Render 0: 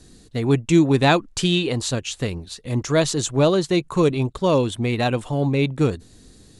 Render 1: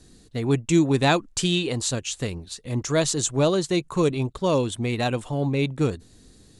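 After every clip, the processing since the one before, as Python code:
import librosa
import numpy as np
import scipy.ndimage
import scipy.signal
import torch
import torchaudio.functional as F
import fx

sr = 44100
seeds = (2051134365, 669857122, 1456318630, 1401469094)

y = fx.dynamic_eq(x, sr, hz=7700.0, q=1.1, threshold_db=-44.0, ratio=4.0, max_db=6)
y = y * librosa.db_to_amplitude(-3.5)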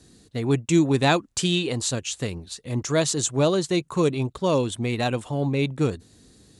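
y = scipy.signal.sosfilt(scipy.signal.butter(2, 63.0, 'highpass', fs=sr, output='sos'), x)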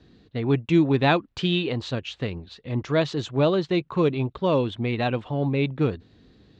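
y = scipy.signal.sosfilt(scipy.signal.butter(4, 3700.0, 'lowpass', fs=sr, output='sos'), x)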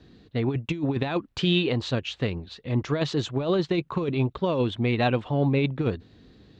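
y = fx.over_compress(x, sr, threshold_db=-22.0, ratio=-0.5)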